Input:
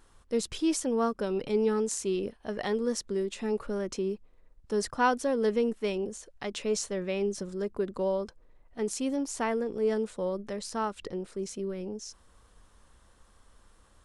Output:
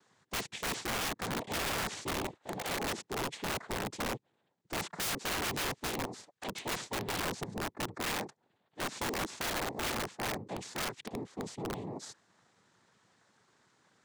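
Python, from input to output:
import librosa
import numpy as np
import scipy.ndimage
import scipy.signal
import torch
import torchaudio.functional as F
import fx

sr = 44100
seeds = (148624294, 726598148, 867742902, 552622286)

y = fx.tracing_dist(x, sr, depth_ms=0.44)
y = fx.noise_vocoder(y, sr, seeds[0], bands=6)
y = (np.mod(10.0 ** (26.0 / 20.0) * y + 1.0, 2.0) - 1.0) / 10.0 ** (26.0 / 20.0)
y = y * librosa.db_to_amplitude(-3.0)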